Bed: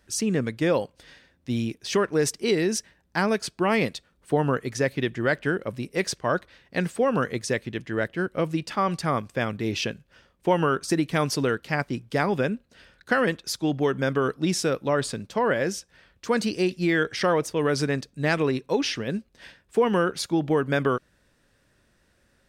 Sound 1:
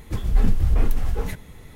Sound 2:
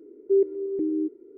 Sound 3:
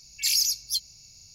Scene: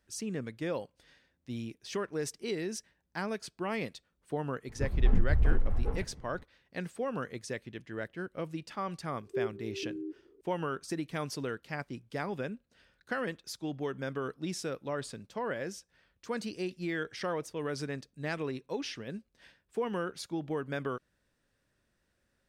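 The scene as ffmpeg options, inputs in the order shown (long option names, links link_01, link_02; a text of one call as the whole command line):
ffmpeg -i bed.wav -i cue0.wav -i cue1.wav -filter_complex "[0:a]volume=-12dB[link_01];[1:a]adynamicsmooth=sensitivity=1.5:basefreq=1200,atrim=end=1.75,asetpts=PTS-STARTPTS,volume=-6.5dB,afade=type=in:duration=0.004:curve=hsin,afade=type=out:start_time=1.746:duration=0.004:curve=hsin,adelay=206829S[link_02];[2:a]atrim=end=1.37,asetpts=PTS-STARTPTS,volume=-13dB,afade=type=in:duration=0.004:curve=hsin,afade=type=out:start_time=1.366:duration=0.004:curve=hsin,adelay=9040[link_03];[link_01][link_02][link_03]amix=inputs=3:normalize=0" out.wav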